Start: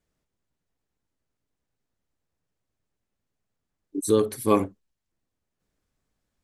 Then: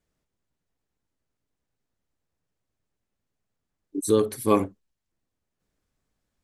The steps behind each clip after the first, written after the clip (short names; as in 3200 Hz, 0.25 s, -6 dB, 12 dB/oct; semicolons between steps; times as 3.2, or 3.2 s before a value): nothing audible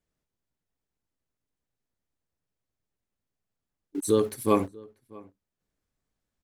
in parallel at -7.5 dB: sample gate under -34.5 dBFS; on the sum: outdoor echo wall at 110 m, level -23 dB; gain -5 dB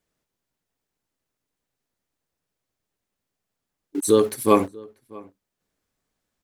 low shelf 150 Hz -9 dB; gain +7 dB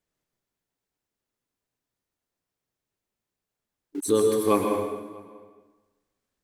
plate-style reverb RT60 1.2 s, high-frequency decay 0.85×, pre-delay 0.105 s, DRR 2 dB; gain -5.5 dB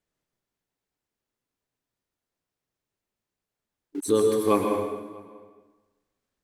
high shelf 6800 Hz -4 dB